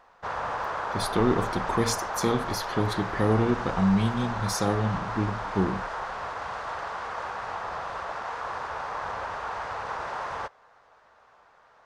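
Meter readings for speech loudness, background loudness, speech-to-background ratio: −27.5 LKFS, −33.0 LKFS, 5.5 dB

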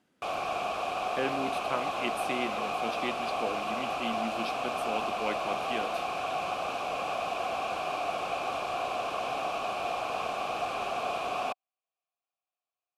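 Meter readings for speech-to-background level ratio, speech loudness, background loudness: −4.5 dB, −37.0 LKFS, −32.5 LKFS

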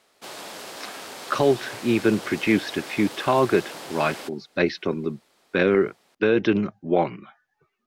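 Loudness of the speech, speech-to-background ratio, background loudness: −23.5 LKFS, 13.5 dB, −37.0 LKFS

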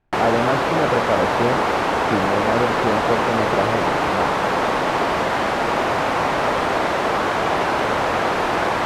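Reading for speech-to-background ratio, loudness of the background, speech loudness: −4.5 dB, −20.0 LKFS, −24.5 LKFS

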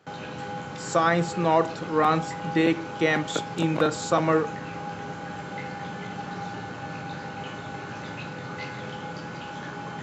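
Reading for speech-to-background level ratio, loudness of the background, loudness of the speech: 10.5 dB, −35.5 LKFS, −25.0 LKFS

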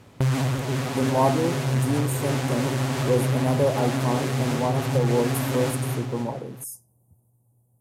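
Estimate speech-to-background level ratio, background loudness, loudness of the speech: −1.5 dB, −26.0 LKFS, −27.5 LKFS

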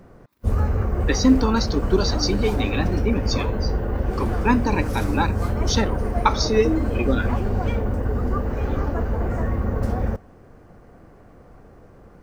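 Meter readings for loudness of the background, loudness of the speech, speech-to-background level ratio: −25.0 LKFS, −23.5 LKFS, 1.5 dB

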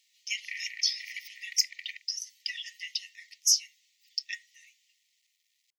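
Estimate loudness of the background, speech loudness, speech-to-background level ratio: −42.0 LKFS, −30.5 LKFS, 11.5 dB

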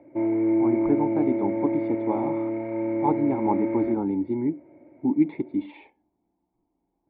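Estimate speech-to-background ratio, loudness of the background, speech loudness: −1.0 dB, −26.0 LKFS, −27.0 LKFS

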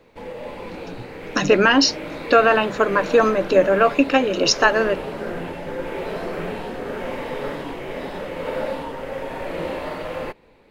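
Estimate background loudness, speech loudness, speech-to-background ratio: −30.5 LKFS, −17.5 LKFS, 13.0 dB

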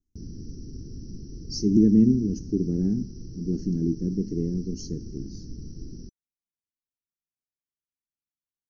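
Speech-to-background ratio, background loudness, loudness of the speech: 17.0 dB, −41.5 LKFS, −24.5 LKFS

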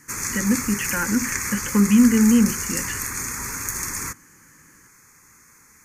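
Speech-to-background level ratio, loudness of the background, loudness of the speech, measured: 5.5 dB, −26.0 LKFS, −20.5 LKFS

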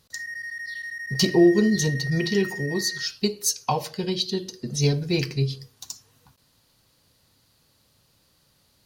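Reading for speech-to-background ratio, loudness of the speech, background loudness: 9.0 dB, −24.0 LKFS, −33.0 LKFS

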